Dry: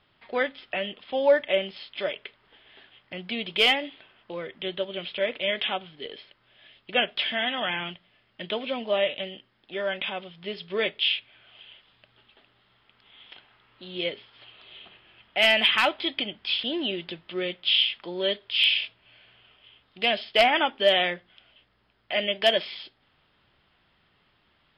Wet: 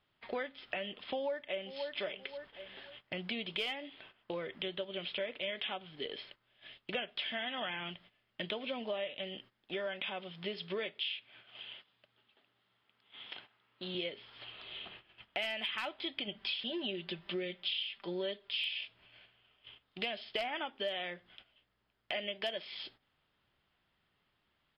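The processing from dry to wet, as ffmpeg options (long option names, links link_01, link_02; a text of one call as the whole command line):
ffmpeg -i in.wav -filter_complex "[0:a]asplit=2[link_01][link_02];[link_02]afade=type=in:start_time=1.01:duration=0.01,afade=type=out:start_time=1.84:duration=0.01,aecho=0:1:530|1060|1590:0.16788|0.0419701|0.0104925[link_03];[link_01][link_03]amix=inputs=2:normalize=0,asettb=1/sr,asplit=3[link_04][link_05][link_06];[link_04]atrim=end=9.864[link_07];[link_05]atrim=start=9.86:end=13.95,asetpts=PTS-STARTPTS,afade=type=in:duration=0.004:curve=qsin,afade=type=out:start_time=4.086:duration=0.004:curve=qsin,highpass=110[link_08];[link_06]atrim=start=13.946[link_09];[link_07][link_08]acrossfade=duration=0.004:curve1=hsin:curve2=qsin[link_10];[link_10][link_09]acrossfade=duration=0.004:curve1=qsin:curve2=hsin,asettb=1/sr,asplit=3[link_11][link_12][link_13];[link_11]atrim=end=16.274[link_14];[link_12]atrim=start=16.27:end=18.84,asetpts=PTS-STARTPTS,afade=type=in:duration=0.004:curve=qsin,afade=type=out:start_time=2.566:duration=0.004:curve=qsin,aecho=1:1:5.1:0.65,atrim=end_sample=113337[link_15];[link_13]atrim=start=18.836[link_16];[link_14][link_15]acrossfade=duration=0.004:curve1=hsin:curve2=qsin[link_17];[link_17][link_16]acrossfade=duration=0.004:curve1=qsin:curve2=hsin,agate=range=-13dB:threshold=-54dB:ratio=16:detection=peak,acompressor=threshold=-37dB:ratio=6,volume=1dB" out.wav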